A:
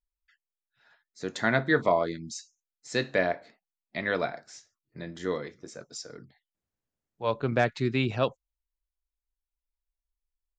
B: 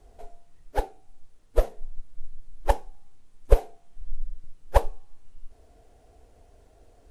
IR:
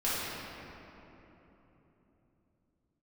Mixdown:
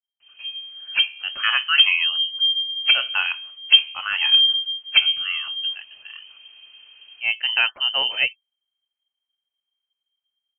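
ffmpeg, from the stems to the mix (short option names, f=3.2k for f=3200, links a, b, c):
-filter_complex "[0:a]volume=-5.5dB[a];[1:a]bandreject=f=72.01:t=h:w=4,bandreject=f=144.02:t=h:w=4,bandreject=f=216.03:t=h:w=4,bandreject=f=288.04:t=h:w=4,bandreject=f=360.05:t=h:w=4,bandreject=f=432.06:t=h:w=4,bandreject=f=504.07:t=h:w=4,bandreject=f=576.08:t=h:w=4,bandreject=f=648.09:t=h:w=4,bandreject=f=720.1:t=h:w=4,bandreject=f=792.11:t=h:w=4,bandreject=f=864.12:t=h:w=4,bandreject=f=936.13:t=h:w=4,bandreject=f=1.00814k:t=h:w=4,bandreject=f=1.08015k:t=h:w=4,acrusher=bits=10:mix=0:aa=0.000001,asoftclip=type=tanh:threshold=-3.5dB,adelay=200,volume=-3.5dB[b];[a][b]amix=inputs=2:normalize=0,dynaudnorm=f=250:g=3:m=10.5dB,lowpass=f=2.7k:t=q:w=0.5098,lowpass=f=2.7k:t=q:w=0.6013,lowpass=f=2.7k:t=q:w=0.9,lowpass=f=2.7k:t=q:w=2.563,afreqshift=-3200"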